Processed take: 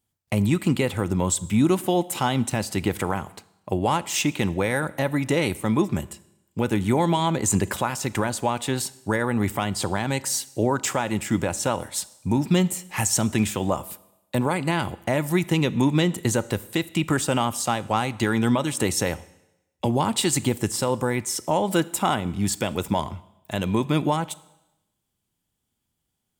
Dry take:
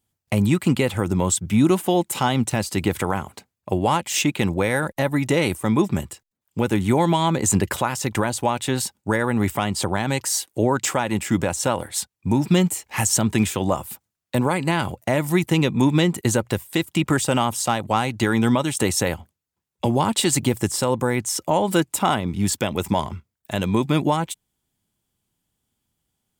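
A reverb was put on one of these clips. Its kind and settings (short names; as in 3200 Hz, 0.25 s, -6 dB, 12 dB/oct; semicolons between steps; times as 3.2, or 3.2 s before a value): Schroeder reverb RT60 0.91 s, combs from 26 ms, DRR 18 dB; gain -2.5 dB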